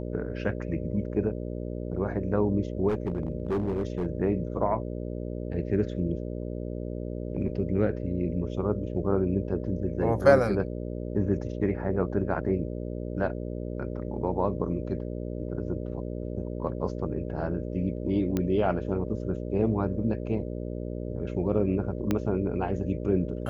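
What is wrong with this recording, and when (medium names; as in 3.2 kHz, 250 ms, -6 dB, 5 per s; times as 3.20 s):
buzz 60 Hz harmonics 10 -34 dBFS
2.88–4.07 s: clipped -23.5 dBFS
18.37 s: pop -15 dBFS
22.11 s: pop -13 dBFS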